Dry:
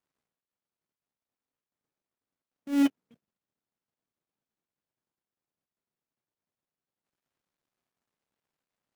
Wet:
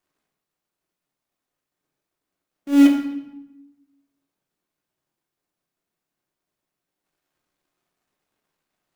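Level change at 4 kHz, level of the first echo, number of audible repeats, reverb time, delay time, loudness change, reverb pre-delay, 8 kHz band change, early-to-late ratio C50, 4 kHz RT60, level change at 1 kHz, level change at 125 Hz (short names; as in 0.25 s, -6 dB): +8.5 dB, none, none, 0.90 s, none, +10.0 dB, 3 ms, n/a, 6.0 dB, 0.75 s, +8.5 dB, n/a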